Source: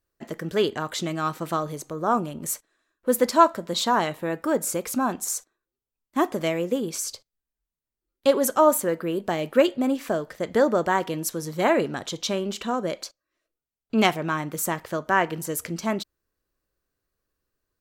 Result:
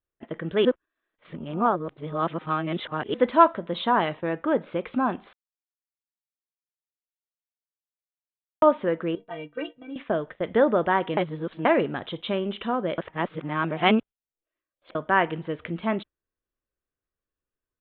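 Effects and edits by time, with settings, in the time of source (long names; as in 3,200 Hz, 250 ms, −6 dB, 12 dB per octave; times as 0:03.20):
0:00.65–0:03.14: reverse
0:05.33–0:08.62: silence
0:09.15–0:09.96: stiff-string resonator 140 Hz, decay 0.24 s, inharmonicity 0.03
0:11.17–0:11.65: reverse
0:12.98–0:14.95: reverse
whole clip: noise gate −37 dBFS, range −10 dB; Butterworth low-pass 3,600 Hz 96 dB per octave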